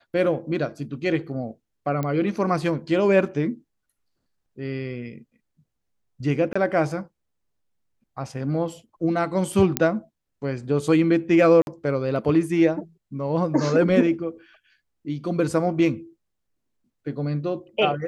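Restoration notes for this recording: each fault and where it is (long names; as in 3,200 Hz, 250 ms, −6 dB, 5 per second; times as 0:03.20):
0:02.03: click −15 dBFS
0:06.53–0:06.55: drop-out 25 ms
0:09.77: click −2 dBFS
0:11.62–0:11.67: drop-out 51 ms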